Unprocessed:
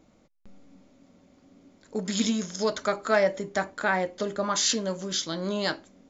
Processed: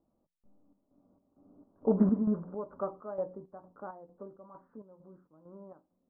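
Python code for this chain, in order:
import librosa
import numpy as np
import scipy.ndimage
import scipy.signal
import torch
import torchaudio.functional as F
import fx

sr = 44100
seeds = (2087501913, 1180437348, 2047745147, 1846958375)

y = fx.doppler_pass(x, sr, speed_mps=14, closest_m=1.9, pass_at_s=2.04)
y = scipy.signal.sosfilt(scipy.signal.butter(8, 1200.0, 'lowpass', fs=sr, output='sos'), y)
y = fx.hum_notches(y, sr, base_hz=60, count=3)
y = fx.chopper(y, sr, hz=2.2, depth_pct=60, duty_pct=60)
y = y * 10.0 ** (8.0 / 20.0)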